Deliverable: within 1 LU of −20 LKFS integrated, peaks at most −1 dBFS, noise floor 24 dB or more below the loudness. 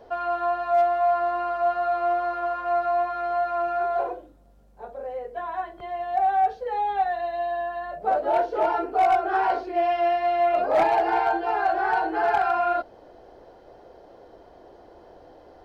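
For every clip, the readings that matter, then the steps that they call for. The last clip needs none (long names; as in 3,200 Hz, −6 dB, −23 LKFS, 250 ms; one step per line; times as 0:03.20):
share of clipped samples 0.3%; peaks flattened at −14.5 dBFS; integrated loudness −24.5 LKFS; sample peak −14.5 dBFS; target loudness −20.0 LKFS
→ clipped peaks rebuilt −14.5 dBFS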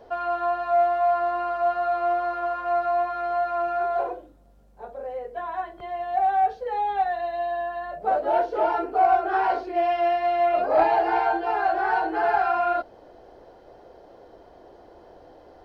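share of clipped samples 0.0%; integrated loudness −24.0 LKFS; sample peak −7.5 dBFS; target loudness −20.0 LKFS
→ level +4 dB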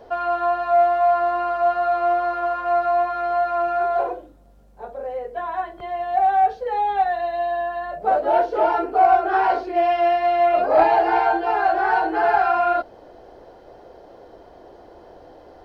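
integrated loudness −20.0 LKFS; sample peak −3.5 dBFS; background noise floor −47 dBFS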